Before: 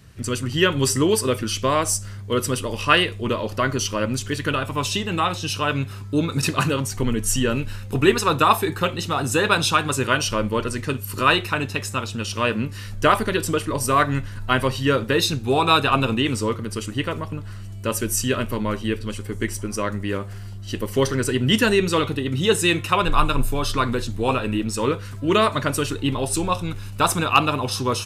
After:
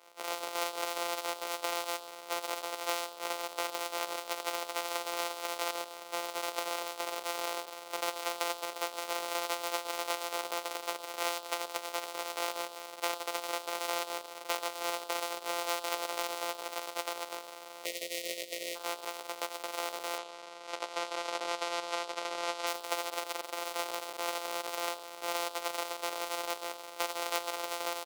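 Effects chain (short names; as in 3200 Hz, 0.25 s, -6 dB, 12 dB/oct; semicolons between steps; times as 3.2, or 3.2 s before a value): sample sorter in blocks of 256 samples; 17.85–18.76 spectral gain 680–1800 Hz -28 dB; 20.18–22.67 LPF 6800 Hz 12 dB/oct; compressor 6:1, threshold -22 dBFS, peak gain reduction 12 dB; HPF 510 Hz 24 dB/oct; notch 1700 Hz, Q 6.5; speakerphone echo 0.11 s, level -15 dB; gain -4 dB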